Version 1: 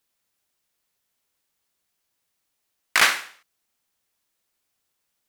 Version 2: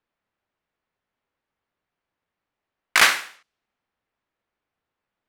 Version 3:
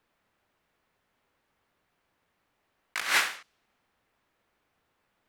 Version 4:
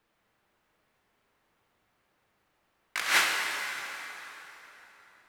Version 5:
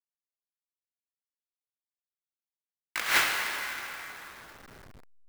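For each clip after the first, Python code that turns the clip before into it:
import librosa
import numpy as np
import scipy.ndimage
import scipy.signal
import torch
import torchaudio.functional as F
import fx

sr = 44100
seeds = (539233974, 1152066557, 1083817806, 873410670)

y1 = fx.env_lowpass(x, sr, base_hz=1900.0, full_db=-26.0)
y1 = y1 * 10.0 ** (2.0 / 20.0)
y2 = fx.over_compress(y1, sr, threshold_db=-29.0, ratio=-1.0)
y3 = fx.rev_plate(y2, sr, seeds[0], rt60_s=4.0, hf_ratio=0.75, predelay_ms=0, drr_db=1.0)
y4 = fx.delta_hold(y3, sr, step_db=-44.0)
y4 = fx.clock_jitter(y4, sr, seeds[1], jitter_ms=0.021)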